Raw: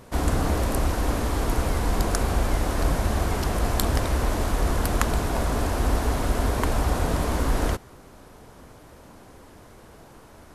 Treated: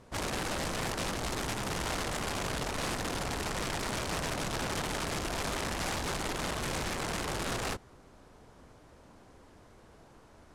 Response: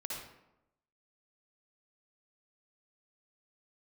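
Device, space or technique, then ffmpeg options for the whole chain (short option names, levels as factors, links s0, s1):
overflowing digital effects unit: -af "aeval=exprs='(mod(10*val(0)+1,2)-1)/10':c=same,lowpass=8600,volume=0.376"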